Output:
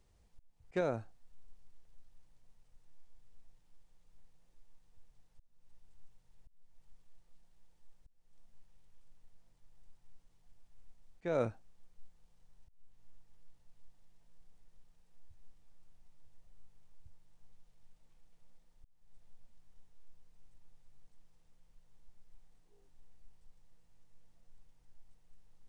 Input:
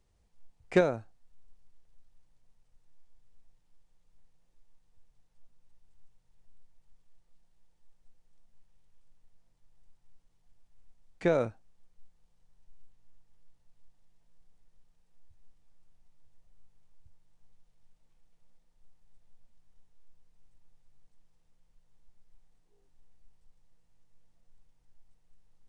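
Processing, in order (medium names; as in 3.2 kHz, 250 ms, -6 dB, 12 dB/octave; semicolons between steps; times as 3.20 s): slow attack 336 ms; trim +2 dB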